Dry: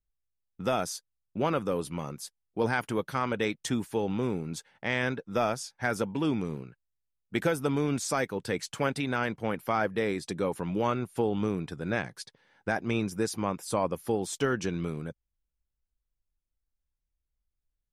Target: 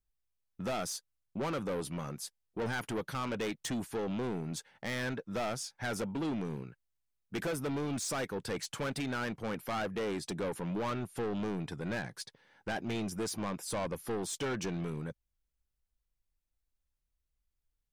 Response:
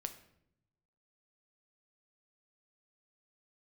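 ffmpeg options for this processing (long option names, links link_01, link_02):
-af "asoftclip=type=tanh:threshold=-31dB"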